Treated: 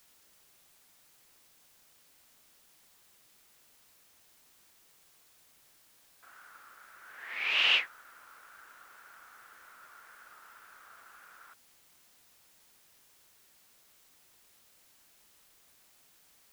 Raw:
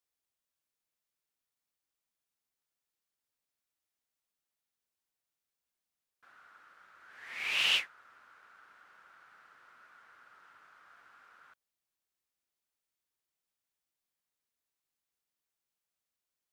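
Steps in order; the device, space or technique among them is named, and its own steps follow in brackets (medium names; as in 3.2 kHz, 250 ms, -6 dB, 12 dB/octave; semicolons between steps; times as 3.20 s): dictaphone (band-pass 290–3500 Hz; level rider gain up to 11.5 dB; wow and flutter; white noise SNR 21 dB); trim -7 dB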